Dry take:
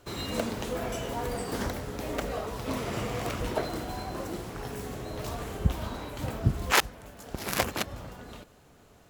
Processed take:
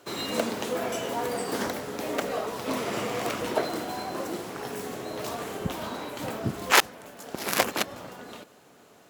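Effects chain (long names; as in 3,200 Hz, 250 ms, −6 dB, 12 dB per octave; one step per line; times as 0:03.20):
high-pass filter 220 Hz 12 dB per octave
level +4 dB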